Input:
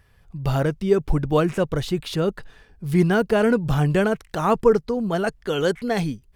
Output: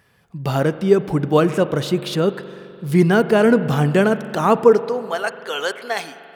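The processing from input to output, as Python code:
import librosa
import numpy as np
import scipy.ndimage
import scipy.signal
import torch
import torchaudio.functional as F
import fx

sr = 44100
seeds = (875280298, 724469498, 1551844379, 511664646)

y = fx.filter_sweep_highpass(x, sr, from_hz=170.0, to_hz=800.0, start_s=4.58, end_s=5.16, q=0.9)
y = fx.rev_spring(y, sr, rt60_s=2.8, pass_ms=(42,), chirp_ms=75, drr_db=12.5)
y = y * 10.0 ** (4.0 / 20.0)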